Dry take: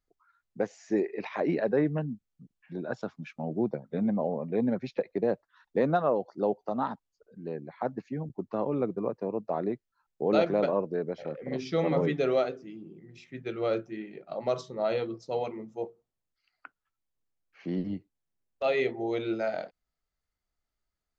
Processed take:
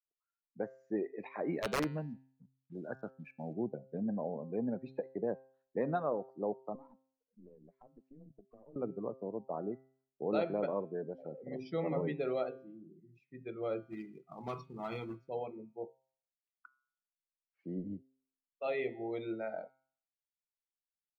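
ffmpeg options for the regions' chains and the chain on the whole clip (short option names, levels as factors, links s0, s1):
-filter_complex "[0:a]asettb=1/sr,asplit=3[s0][s1][s2];[s0]atrim=end=1.474[s3];[s1]atrim=start=1.47:end=3.54,asetpts=PTS-STARTPTS,afade=t=in:d=0.004:c=qsin,afade=t=out:st=2.066:d=0.004:c=qsin,highshelf=f=2300:g=3,acrusher=bits=7:mix=0:aa=0.5,aeval=exprs='(mod(7.5*val(0)+1,2)-1)/7.5':c=same[s4];[s2]atrim=start=3.536[s5];[s3][s4]acrossfade=d=0.004:c1=hsin:c2=qsin[s6];[s6][s5]acrossfade=d=0.004:c1=qsin:c2=hsin,asettb=1/sr,asplit=3[s7][s8][s9];[s7]atrim=end=6.754[s10];[s8]atrim=start=6.75:end=8.76,asetpts=PTS-STARTPTS,afade=t=in:d=0.004:c=qsin,afade=t=out:st=2.006:d=0.004:c=qsin,afreqshift=18,acompressor=threshold=0.0126:ratio=16:attack=3.2:release=140:knee=1:detection=peak,aeval=exprs='(tanh(70.8*val(0)+0.8)-tanh(0.8))/70.8':c=same[s11];[s9]atrim=start=8.756[s12];[s10][s11]acrossfade=d=0.004:c1=hsin:c2=qsin[s13];[s13][s12]acrossfade=d=0.004:c1=qsin:c2=hsin,asettb=1/sr,asplit=3[s14][s15][s16];[s14]atrim=end=13.824[s17];[s15]atrim=start=13.82:end=15.29,asetpts=PTS-STARTPTS,afade=t=in:d=0.004:c=qsin,afade=t=out:st=1.466:d=0.004:c=qsin,highshelf=f=6300:g=-9,aecho=1:1:0.9:0.86,atrim=end_sample=64827,acrusher=bits=2:mode=log:mix=0:aa=0.000001[s18];[s16]atrim=start=15.286[s19];[s17][s18]acrossfade=d=0.004:c1=hsin:c2=qsin[s20];[s20][s19]acrossfade=d=0.004:c1=qsin:c2=hsin,afftdn=nr=23:nf=-41,highshelf=f=5500:g=-3.5,bandreject=f=132:t=h:w=4,bandreject=f=264:t=h:w=4,bandreject=f=396:t=h:w=4,bandreject=f=528:t=h:w=4,bandreject=f=660:t=h:w=4,bandreject=f=792:t=h:w=4,bandreject=f=924:t=h:w=4,bandreject=f=1056:t=h:w=4,bandreject=f=1188:t=h:w=4,bandreject=f=1320:t=h:w=4,bandreject=f=1452:t=h:w=4,bandreject=f=1584:t=h:w=4,bandreject=f=1716:t=h:w=4,bandreject=f=1848:t=h:w=4,bandreject=f=1980:t=h:w=4,bandreject=f=2112:t=h:w=4,bandreject=f=2244:t=h:w=4,bandreject=f=2376:t=h:w=4,bandreject=f=2508:t=h:w=4,bandreject=f=2640:t=h:w=4,bandreject=f=2772:t=h:w=4,bandreject=f=2904:t=h:w=4,bandreject=f=3036:t=h:w=4,bandreject=f=3168:t=h:w=4,bandreject=f=3300:t=h:w=4,bandreject=f=3432:t=h:w=4,bandreject=f=3564:t=h:w=4,bandreject=f=3696:t=h:w=4,bandreject=f=3828:t=h:w=4,bandreject=f=3960:t=h:w=4,bandreject=f=4092:t=h:w=4,bandreject=f=4224:t=h:w=4,bandreject=f=4356:t=h:w=4,bandreject=f=4488:t=h:w=4,bandreject=f=4620:t=h:w=4,volume=0.398"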